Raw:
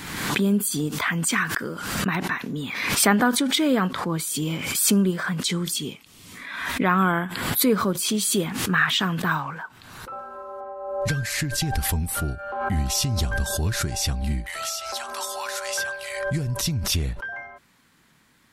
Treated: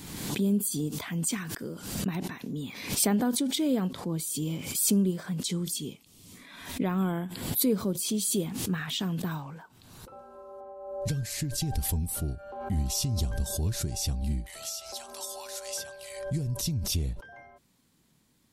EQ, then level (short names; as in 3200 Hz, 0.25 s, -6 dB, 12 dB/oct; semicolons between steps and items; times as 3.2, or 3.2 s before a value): dynamic EQ 1200 Hz, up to -4 dB, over -38 dBFS, Q 2.7; bell 1600 Hz -13.5 dB 1.8 oct; -4.0 dB